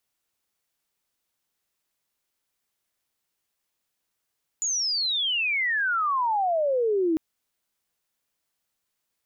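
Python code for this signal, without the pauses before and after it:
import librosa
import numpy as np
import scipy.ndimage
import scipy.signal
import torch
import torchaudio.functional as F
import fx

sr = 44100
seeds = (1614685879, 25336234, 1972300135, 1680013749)

y = fx.chirp(sr, length_s=2.55, from_hz=7000.0, to_hz=310.0, law='logarithmic', from_db=-23.5, to_db=-20.0)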